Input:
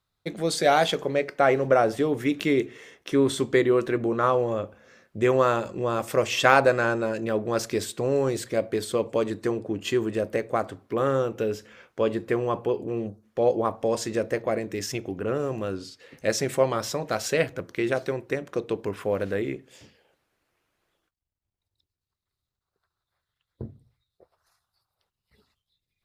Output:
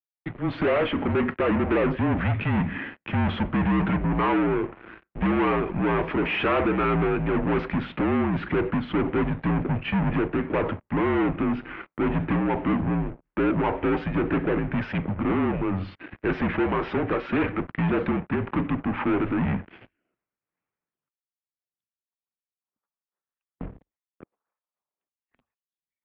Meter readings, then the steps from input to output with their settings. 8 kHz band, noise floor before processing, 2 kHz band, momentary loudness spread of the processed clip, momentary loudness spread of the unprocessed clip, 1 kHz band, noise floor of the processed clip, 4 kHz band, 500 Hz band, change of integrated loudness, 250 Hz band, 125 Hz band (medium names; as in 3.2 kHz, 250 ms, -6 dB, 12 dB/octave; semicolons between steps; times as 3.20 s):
under -40 dB, under -85 dBFS, 0.0 dB, 6 LU, 11 LU, -1.0 dB, under -85 dBFS, -6.0 dB, -4.0 dB, 0.0 dB, +5.5 dB, +6.5 dB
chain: fade-in on the opening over 0.91 s; tremolo triangle 1.9 Hz, depth 60%; saturation -16.5 dBFS, distortion -14 dB; waveshaping leveller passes 5; mistuned SSB -180 Hz 240–2800 Hz; trim -2.5 dB